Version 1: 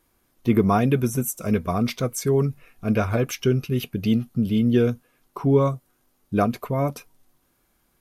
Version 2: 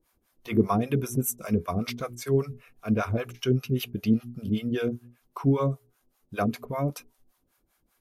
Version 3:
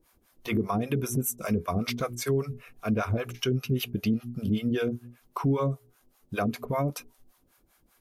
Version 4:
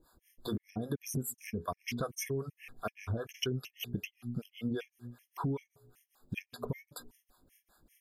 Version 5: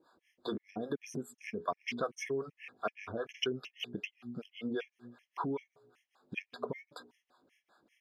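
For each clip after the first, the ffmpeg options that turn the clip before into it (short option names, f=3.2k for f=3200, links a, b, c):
-filter_complex "[0:a]bandreject=f=60:t=h:w=6,bandreject=f=120:t=h:w=6,bandreject=f=180:t=h:w=6,bandreject=f=240:t=h:w=6,bandreject=f=300:t=h:w=6,bandreject=f=360:t=h:w=6,bandreject=f=420:t=h:w=6,acrossover=split=560[a][b];[a]aeval=exprs='val(0)*(1-1/2+1/2*cos(2*PI*5.1*n/s))':c=same[c];[b]aeval=exprs='val(0)*(1-1/2-1/2*cos(2*PI*5.1*n/s))':c=same[d];[c][d]amix=inputs=2:normalize=0"
-filter_complex "[0:a]asplit=2[a][b];[b]acompressor=threshold=-35dB:ratio=6,volume=-1dB[c];[a][c]amix=inputs=2:normalize=0,alimiter=limit=-18dB:level=0:latency=1:release=128"
-af "acompressor=threshold=-32dB:ratio=6,afftfilt=real='re*gt(sin(2*PI*2.6*pts/sr)*(1-2*mod(floor(b*sr/1024/1700),2)),0)':imag='im*gt(sin(2*PI*2.6*pts/sr)*(1-2*mod(floor(b*sr/1024/1700),2)),0)':win_size=1024:overlap=0.75,volume=1dB"
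-af "highpass=300,lowpass=3.6k,volume=3dB"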